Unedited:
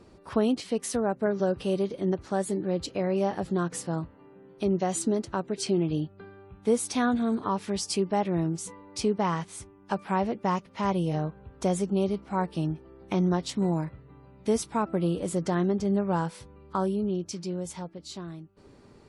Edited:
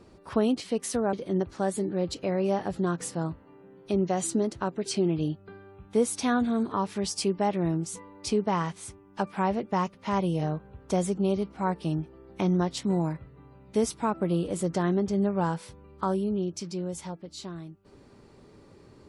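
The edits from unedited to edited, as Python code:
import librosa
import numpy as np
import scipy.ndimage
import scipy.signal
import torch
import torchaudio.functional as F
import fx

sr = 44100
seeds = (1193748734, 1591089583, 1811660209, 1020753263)

y = fx.edit(x, sr, fx.cut(start_s=1.13, length_s=0.72), tone=tone)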